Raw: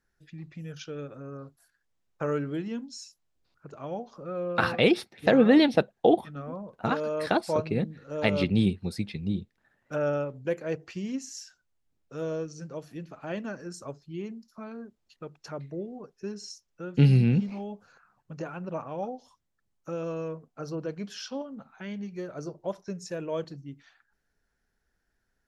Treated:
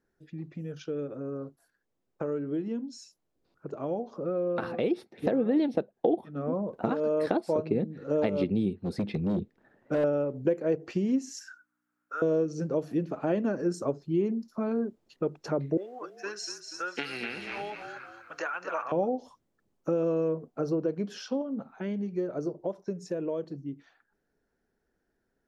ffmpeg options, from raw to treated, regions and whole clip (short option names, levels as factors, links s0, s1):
-filter_complex "[0:a]asettb=1/sr,asplit=3[s0][s1][s2];[s0]atrim=end=8.744[s3];[s1]atrim=start=8.74:end=10.04,asetpts=PTS-STARTPTS,afade=t=in:d=0.004:c=qsin,afade=t=out:st=1.296:d=0.004:c=qsin,highshelf=f=5800:g=-8.5,asoftclip=type=hard:threshold=0.0266[s4];[s2]atrim=start=10.036[s5];[s3][s4]acrossfade=d=0.004:c1=hsin:c2=qsin[s6];[s6][s5]acrossfade=d=0.004:c1=qsin:c2=hsin,asettb=1/sr,asplit=3[s7][s8][s9];[s7]atrim=end=11.394[s10];[s8]atrim=start=11.39:end=12.22,asetpts=PTS-STARTPTS,afade=t=in:d=0.004:c=qsin,afade=t=out:st=0.826:d=0.004:c=qsin,equalizer=f=3600:w=0.74:g=-9,aeval=exprs='val(0)+0.00126*(sin(2*PI*60*n/s)+sin(2*PI*2*60*n/s)/2+sin(2*PI*3*60*n/s)/3+sin(2*PI*4*60*n/s)/4+sin(2*PI*5*60*n/s)/5)':c=same,highpass=f=1400:t=q:w=8.4[s11];[s9]atrim=start=12.216[s12];[s10][s11]acrossfade=d=0.004:c1=hsin:c2=qsin[s13];[s13][s12]acrossfade=d=0.004:c1=qsin:c2=hsin,asettb=1/sr,asplit=3[s14][s15][s16];[s14]atrim=end=15.774[s17];[s15]atrim=start=15.77:end=18.92,asetpts=PTS-STARTPTS,afade=t=in:d=0.004:c=qsin,afade=t=out:st=3.146:d=0.004:c=qsin,acontrast=63,highpass=f=1500:t=q:w=1.8,asplit=5[s18][s19][s20][s21][s22];[s19]adelay=240,afreqshift=-36,volume=0.398[s23];[s20]adelay=480,afreqshift=-72,volume=0.14[s24];[s21]adelay=720,afreqshift=-108,volume=0.049[s25];[s22]adelay=960,afreqshift=-144,volume=0.017[s26];[s18][s23][s24][s25][s26]amix=inputs=5:normalize=0,atrim=end_sample=138915[s27];[s16]atrim=start=18.916[s28];[s17][s27]acrossfade=d=0.004:c1=hsin:c2=qsin[s29];[s29][s28]acrossfade=d=0.004:c1=qsin:c2=hsin,acompressor=threshold=0.0158:ratio=5,equalizer=f=360:w=0.47:g=15,dynaudnorm=f=320:g=31:m=2.24,volume=0.473"